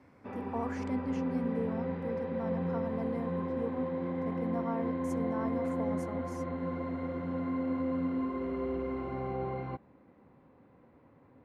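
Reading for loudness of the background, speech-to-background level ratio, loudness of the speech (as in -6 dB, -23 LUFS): -35.0 LUFS, -5.0 dB, -40.0 LUFS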